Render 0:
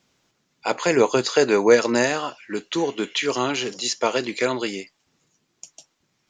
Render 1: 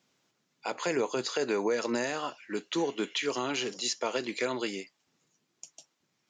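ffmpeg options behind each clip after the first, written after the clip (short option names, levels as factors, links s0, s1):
-af "highpass=130,alimiter=limit=0.211:level=0:latency=1:release=141,volume=0.501"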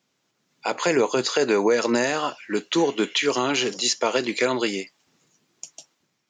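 -af "dynaudnorm=f=130:g=7:m=2.82"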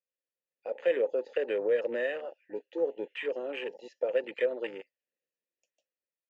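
-filter_complex "[0:a]asplit=3[s0][s1][s2];[s0]bandpass=f=530:t=q:w=8,volume=1[s3];[s1]bandpass=f=1840:t=q:w=8,volume=0.501[s4];[s2]bandpass=f=2480:t=q:w=8,volume=0.355[s5];[s3][s4][s5]amix=inputs=3:normalize=0,afwtdn=0.01"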